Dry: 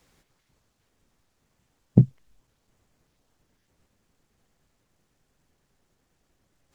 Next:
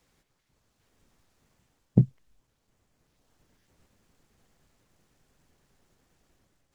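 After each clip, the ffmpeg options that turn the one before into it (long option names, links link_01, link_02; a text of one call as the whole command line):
ffmpeg -i in.wav -af "dynaudnorm=framelen=490:gausssize=3:maxgain=8.5dB,volume=-5.5dB" out.wav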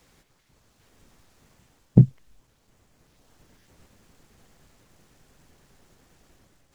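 ffmpeg -i in.wav -af "alimiter=level_in=10.5dB:limit=-1dB:release=50:level=0:latency=1,volume=-1dB" out.wav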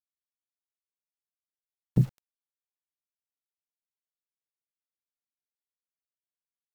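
ffmpeg -i in.wav -af "acrusher=bits=6:mix=0:aa=0.000001,alimiter=limit=-7.5dB:level=0:latency=1:release=57,volume=-5dB" out.wav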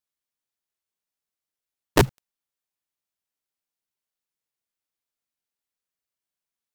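ffmpeg -i in.wav -af "aeval=exprs='(mod(5.62*val(0)+1,2)-1)/5.62':channel_layout=same,volume=5.5dB" out.wav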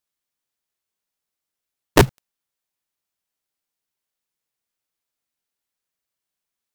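ffmpeg -i in.wav -af "acrusher=bits=5:mode=log:mix=0:aa=0.000001,volume=4.5dB" out.wav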